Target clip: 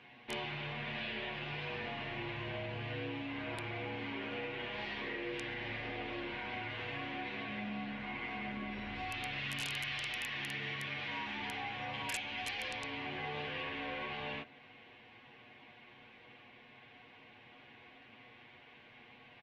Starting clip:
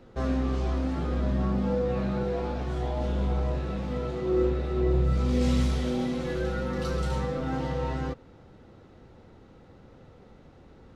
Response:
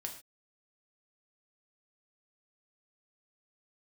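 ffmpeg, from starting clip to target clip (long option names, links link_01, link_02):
-filter_complex "[0:a]lowpass=frequency=4900:width_type=q:width=2,aderivative,aecho=1:1:4.7:0.83,acompressor=threshold=-50dB:ratio=5,aeval=exprs='(mod(119*val(0)+1,2)-1)/119':channel_layout=same,asetrate=24872,aresample=44100,bandreject=frequency=1300:width=8.4,asplit=2[link_01][link_02];[1:a]atrim=start_sample=2205,lowpass=1400,adelay=45[link_03];[link_02][link_03]afir=irnorm=-1:irlink=0,volume=-13.5dB[link_04];[link_01][link_04]amix=inputs=2:normalize=0,volume=12.5dB"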